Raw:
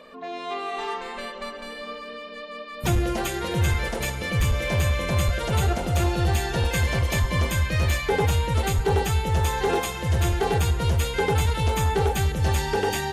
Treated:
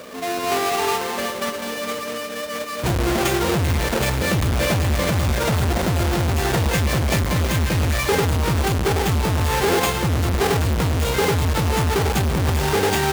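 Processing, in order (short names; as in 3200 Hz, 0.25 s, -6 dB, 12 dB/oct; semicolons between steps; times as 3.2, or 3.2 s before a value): half-waves squared off; HPF 61 Hz 24 dB/oct; limiter -16 dBFS, peak gain reduction 9.5 dB; gain +5 dB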